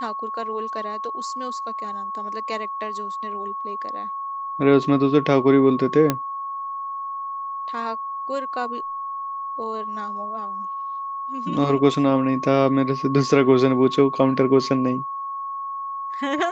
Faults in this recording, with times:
whistle 1,100 Hz −27 dBFS
0:06.10: click −5 dBFS

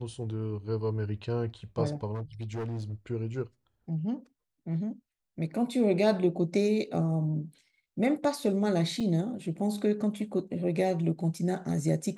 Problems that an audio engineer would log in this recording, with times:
0:02.14–0:02.94: clipping −31.5 dBFS
0:09.00–0:09.01: drop-out 5.2 ms

